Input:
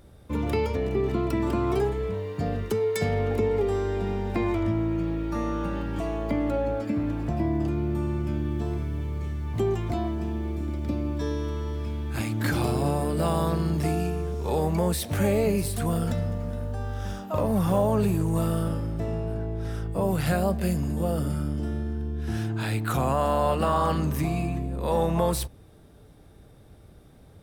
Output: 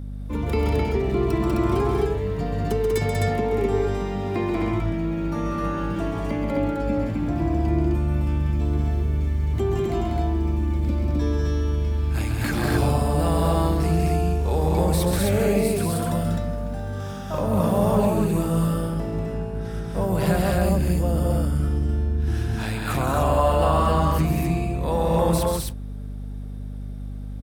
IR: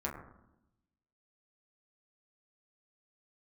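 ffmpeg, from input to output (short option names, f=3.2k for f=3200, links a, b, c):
-af "aecho=1:1:134.1|192.4|259.5:0.501|0.631|0.794,aeval=exprs='val(0)+0.0282*(sin(2*PI*50*n/s)+sin(2*PI*2*50*n/s)/2+sin(2*PI*3*50*n/s)/3+sin(2*PI*4*50*n/s)/4+sin(2*PI*5*50*n/s)/5)':c=same"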